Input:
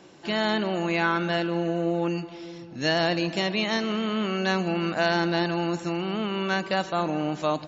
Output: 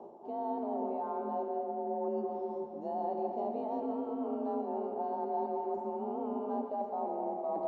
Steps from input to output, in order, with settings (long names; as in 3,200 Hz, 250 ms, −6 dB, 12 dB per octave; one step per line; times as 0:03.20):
drawn EQ curve 150 Hz 0 dB, 830 Hz +12 dB, 1,700 Hz −27 dB
reversed playback
downward compressor 5 to 1, threshold −34 dBFS, peak gain reduction 19 dB
reversed playback
frequency shifter +44 Hz
tape delay 87 ms, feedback 84%, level −18 dB, low-pass 3,500 Hz
on a send at −3.5 dB: convolution reverb RT60 2.3 s, pre-delay 117 ms
on the sum: level −2.5 dB